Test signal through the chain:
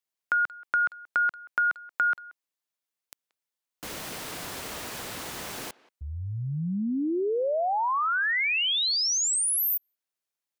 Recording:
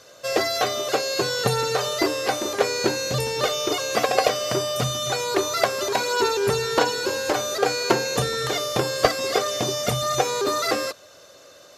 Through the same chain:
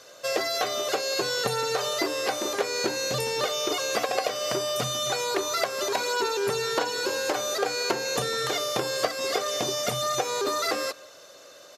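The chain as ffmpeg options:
-filter_complex "[0:a]highpass=f=250:p=1,acompressor=threshold=-24dB:ratio=3,asplit=2[a][b];[b]adelay=180,highpass=300,lowpass=3.4k,asoftclip=type=hard:threshold=-18dB,volume=-21dB[c];[a][c]amix=inputs=2:normalize=0"

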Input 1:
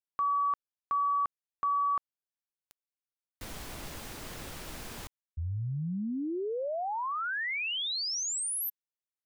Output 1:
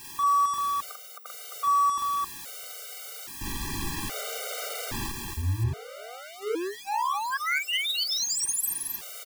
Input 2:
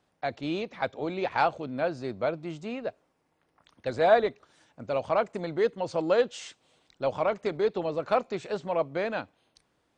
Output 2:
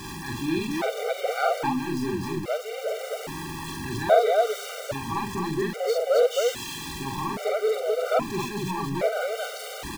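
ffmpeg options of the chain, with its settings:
-af "aeval=exprs='val(0)+0.5*0.0316*sgn(val(0))':c=same,aecho=1:1:43.73|265.3:0.794|0.794,afftfilt=real='re*gt(sin(2*PI*0.61*pts/sr)*(1-2*mod(floor(b*sr/1024/390),2)),0)':imag='im*gt(sin(2*PI*0.61*pts/sr)*(1-2*mod(floor(b*sr/1024/390),2)),0)':win_size=1024:overlap=0.75"

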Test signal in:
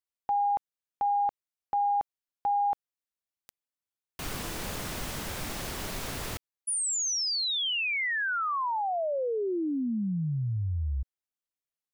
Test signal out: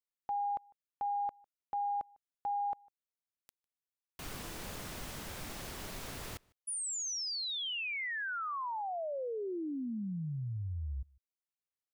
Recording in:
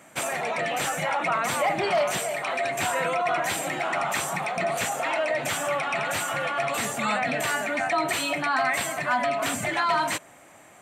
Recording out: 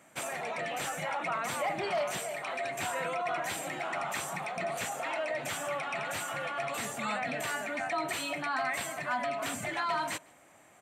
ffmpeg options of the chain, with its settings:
-filter_complex "[0:a]asplit=2[a][b];[b]adelay=151.6,volume=-27dB,highshelf=f=4k:g=-3.41[c];[a][c]amix=inputs=2:normalize=0,volume=-8dB"

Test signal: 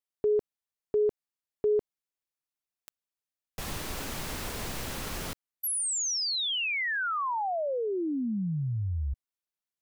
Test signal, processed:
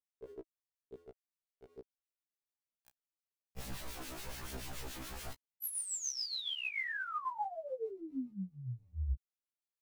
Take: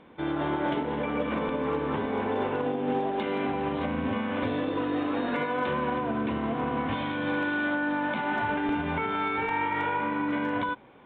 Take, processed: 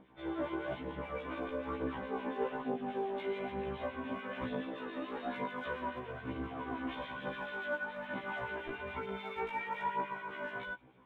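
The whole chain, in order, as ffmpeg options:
-filter_complex "[0:a]acrossover=split=1800[a][b];[a]aeval=exprs='val(0)*(1-0.7/2+0.7/2*cos(2*PI*7*n/s))':c=same[c];[b]aeval=exprs='val(0)*(1-0.7/2-0.7/2*cos(2*PI*7*n/s))':c=same[d];[c][d]amix=inputs=2:normalize=0,aphaser=in_gain=1:out_gain=1:delay=3.5:decay=0.49:speed=1.1:type=triangular,afftfilt=real='re*1.73*eq(mod(b,3),0)':imag='im*1.73*eq(mod(b,3),0)':win_size=2048:overlap=0.75,volume=-5dB"

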